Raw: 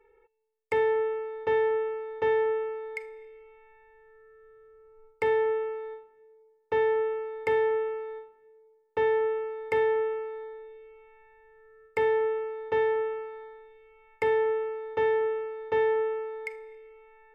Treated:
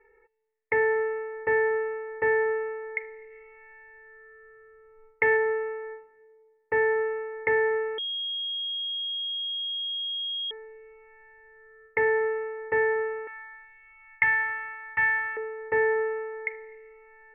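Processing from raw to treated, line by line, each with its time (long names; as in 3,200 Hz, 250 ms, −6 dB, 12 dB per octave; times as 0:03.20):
0:03.30–0:05.36: high-shelf EQ 2,200 Hz → 2,600 Hz +10.5 dB
0:07.98–0:10.51: beep over 3,270 Hz −10 dBFS
0:13.27–0:15.37: drawn EQ curve 170 Hz 0 dB, 250 Hz −9 dB, 450 Hz −27 dB, 900 Hz 0 dB, 2,800 Hz +9 dB
whole clip: Butterworth low-pass 2,500 Hz 48 dB per octave; parametric band 1,900 Hz +15 dB 0.28 octaves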